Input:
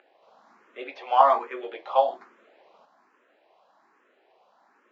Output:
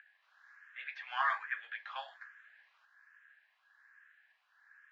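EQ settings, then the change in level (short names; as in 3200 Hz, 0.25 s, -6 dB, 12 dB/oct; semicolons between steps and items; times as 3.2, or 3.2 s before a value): ladder high-pass 1600 Hz, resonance 85%; +4.5 dB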